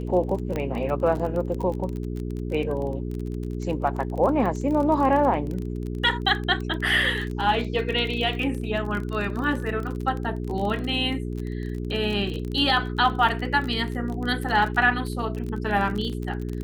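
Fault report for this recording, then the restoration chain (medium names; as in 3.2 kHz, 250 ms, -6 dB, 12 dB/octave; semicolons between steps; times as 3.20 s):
crackle 27 per s -29 dBFS
hum 60 Hz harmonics 7 -30 dBFS
0.56 s: pop -16 dBFS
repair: de-click; de-hum 60 Hz, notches 7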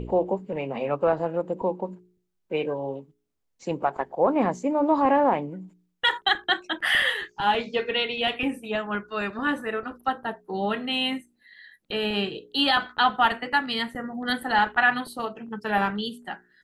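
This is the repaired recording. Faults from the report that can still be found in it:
nothing left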